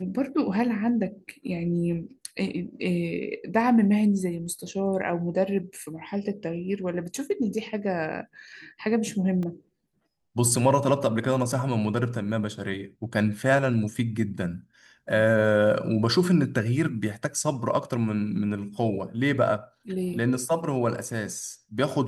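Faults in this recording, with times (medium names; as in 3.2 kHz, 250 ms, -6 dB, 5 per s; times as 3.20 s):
9.43 s: dropout 2.5 ms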